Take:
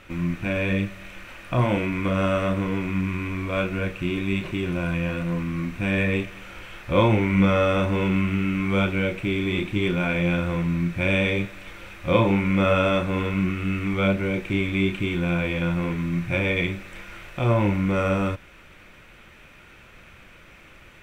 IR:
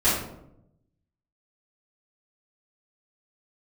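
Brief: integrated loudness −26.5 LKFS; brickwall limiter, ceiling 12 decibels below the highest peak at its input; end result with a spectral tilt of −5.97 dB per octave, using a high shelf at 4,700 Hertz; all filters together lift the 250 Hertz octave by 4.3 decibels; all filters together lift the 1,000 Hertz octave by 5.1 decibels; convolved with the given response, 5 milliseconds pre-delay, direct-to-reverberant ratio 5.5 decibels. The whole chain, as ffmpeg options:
-filter_complex "[0:a]equalizer=frequency=250:width_type=o:gain=6,equalizer=frequency=1000:width_type=o:gain=5.5,highshelf=frequency=4700:gain=9,alimiter=limit=-13.5dB:level=0:latency=1,asplit=2[link_01][link_02];[1:a]atrim=start_sample=2205,adelay=5[link_03];[link_02][link_03]afir=irnorm=-1:irlink=0,volume=-21dB[link_04];[link_01][link_04]amix=inputs=2:normalize=0,volume=-5dB"

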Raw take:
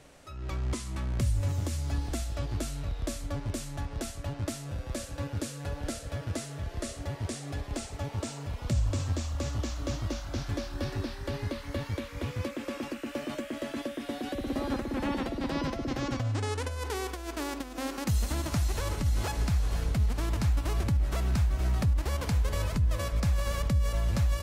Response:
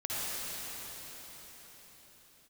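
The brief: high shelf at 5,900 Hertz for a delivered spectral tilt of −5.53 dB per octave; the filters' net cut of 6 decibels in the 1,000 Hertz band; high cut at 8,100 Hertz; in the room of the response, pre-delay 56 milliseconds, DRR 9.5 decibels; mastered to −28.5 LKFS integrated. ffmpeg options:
-filter_complex "[0:a]lowpass=8100,equalizer=frequency=1000:width_type=o:gain=-8,highshelf=frequency=5900:gain=5,asplit=2[link_01][link_02];[1:a]atrim=start_sample=2205,adelay=56[link_03];[link_02][link_03]afir=irnorm=-1:irlink=0,volume=-17dB[link_04];[link_01][link_04]amix=inputs=2:normalize=0,volume=3.5dB"

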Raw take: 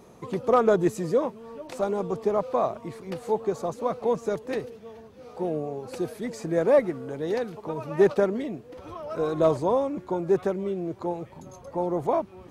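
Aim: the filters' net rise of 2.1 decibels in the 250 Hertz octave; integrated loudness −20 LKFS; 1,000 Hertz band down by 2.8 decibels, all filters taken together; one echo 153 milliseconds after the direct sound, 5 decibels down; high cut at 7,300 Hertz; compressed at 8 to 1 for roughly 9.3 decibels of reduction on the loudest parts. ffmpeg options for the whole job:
ffmpeg -i in.wav -af "lowpass=7300,equalizer=frequency=250:width_type=o:gain=3.5,equalizer=frequency=1000:width_type=o:gain=-4,acompressor=threshold=-24dB:ratio=8,aecho=1:1:153:0.562,volume=10dB" out.wav

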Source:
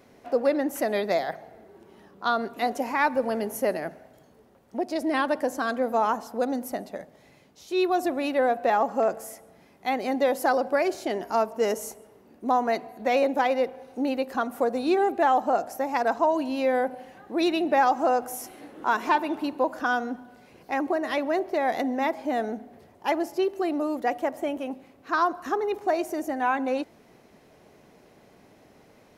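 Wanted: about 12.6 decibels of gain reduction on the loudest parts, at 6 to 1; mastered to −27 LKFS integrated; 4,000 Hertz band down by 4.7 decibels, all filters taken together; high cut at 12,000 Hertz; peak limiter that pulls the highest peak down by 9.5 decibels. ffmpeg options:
ffmpeg -i in.wav -af "lowpass=12000,equalizer=frequency=4000:width_type=o:gain=-6,acompressor=threshold=-32dB:ratio=6,volume=12.5dB,alimiter=limit=-17.5dB:level=0:latency=1" out.wav

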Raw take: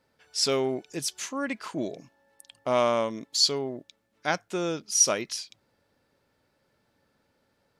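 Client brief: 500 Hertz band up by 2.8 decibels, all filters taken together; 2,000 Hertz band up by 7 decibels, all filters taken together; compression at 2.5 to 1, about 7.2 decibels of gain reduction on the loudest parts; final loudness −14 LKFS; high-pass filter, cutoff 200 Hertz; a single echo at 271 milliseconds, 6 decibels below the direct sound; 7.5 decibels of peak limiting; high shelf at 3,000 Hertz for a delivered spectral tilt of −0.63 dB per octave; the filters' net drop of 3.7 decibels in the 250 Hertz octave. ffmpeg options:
ffmpeg -i in.wav -af "highpass=200,equalizer=frequency=250:width_type=o:gain=-6,equalizer=frequency=500:width_type=o:gain=4.5,equalizer=frequency=2000:width_type=o:gain=7,highshelf=frequency=3000:gain=5,acompressor=threshold=-22dB:ratio=2.5,alimiter=limit=-15.5dB:level=0:latency=1,aecho=1:1:271:0.501,volume=14dB" out.wav

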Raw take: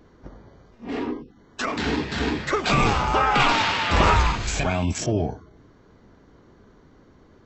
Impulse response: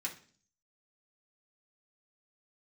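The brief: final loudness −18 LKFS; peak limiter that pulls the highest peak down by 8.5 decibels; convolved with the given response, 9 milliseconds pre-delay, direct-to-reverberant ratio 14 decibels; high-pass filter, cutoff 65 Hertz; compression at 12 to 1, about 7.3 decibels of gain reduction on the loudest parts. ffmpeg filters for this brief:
-filter_complex "[0:a]highpass=65,acompressor=threshold=-21dB:ratio=12,alimiter=limit=-19.5dB:level=0:latency=1,asplit=2[link_01][link_02];[1:a]atrim=start_sample=2205,adelay=9[link_03];[link_02][link_03]afir=irnorm=-1:irlink=0,volume=-15dB[link_04];[link_01][link_04]amix=inputs=2:normalize=0,volume=11dB"

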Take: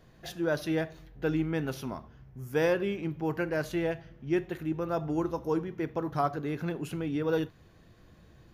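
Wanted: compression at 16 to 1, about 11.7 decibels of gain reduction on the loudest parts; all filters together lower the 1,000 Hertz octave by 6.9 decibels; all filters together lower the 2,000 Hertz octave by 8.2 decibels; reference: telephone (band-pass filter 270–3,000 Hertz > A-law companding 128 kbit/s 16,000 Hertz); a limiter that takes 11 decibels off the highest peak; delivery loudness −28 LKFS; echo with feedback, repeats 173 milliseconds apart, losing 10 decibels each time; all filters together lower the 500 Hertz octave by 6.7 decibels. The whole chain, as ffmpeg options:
ffmpeg -i in.wav -af "equalizer=frequency=500:width_type=o:gain=-6,equalizer=frequency=1000:width_type=o:gain=-5,equalizer=frequency=2000:width_type=o:gain=-8,acompressor=threshold=-38dB:ratio=16,alimiter=level_in=15.5dB:limit=-24dB:level=0:latency=1,volume=-15.5dB,highpass=270,lowpass=3000,aecho=1:1:173|346|519|692:0.316|0.101|0.0324|0.0104,volume=23.5dB" -ar 16000 -c:a pcm_alaw out.wav

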